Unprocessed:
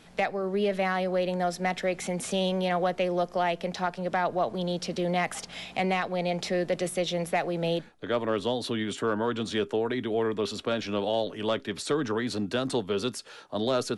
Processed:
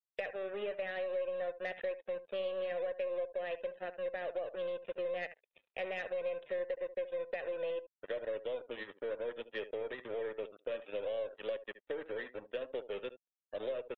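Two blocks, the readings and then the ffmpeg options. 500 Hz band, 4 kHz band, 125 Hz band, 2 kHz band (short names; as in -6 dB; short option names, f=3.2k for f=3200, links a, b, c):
-8.0 dB, -17.5 dB, under -25 dB, -10.5 dB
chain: -filter_complex "[0:a]asplit=3[a][b][c];[a]bandpass=f=530:t=q:w=8,volume=0dB[d];[b]bandpass=f=1.84k:t=q:w=8,volume=-6dB[e];[c]bandpass=f=2.48k:t=q:w=8,volume=-9dB[f];[d][e][f]amix=inputs=3:normalize=0,aresample=8000,aeval=exprs='sgn(val(0))*max(abs(val(0))-0.00398,0)':c=same,aresample=44100,acompressor=threshold=-38dB:ratio=6,aeval=exprs='0.0316*(cos(1*acos(clip(val(0)/0.0316,-1,1)))-cos(1*PI/2))+0.00224*(cos(3*acos(clip(val(0)/0.0316,-1,1)))-cos(3*PI/2))+0.000224*(cos(4*acos(clip(val(0)/0.0316,-1,1)))-cos(4*PI/2))+0.00251*(cos(5*acos(clip(val(0)/0.0316,-1,1)))-cos(5*PI/2))+0.000891*(cos(8*acos(clip(val(0)/0.0316,-1,1)))-cos(8*PI/2))':c=same,aecho=1:1:73:0.211,afftdn=nr=21:nf=-62,lowshelf=f=400:g=-5,volume=5.5dB"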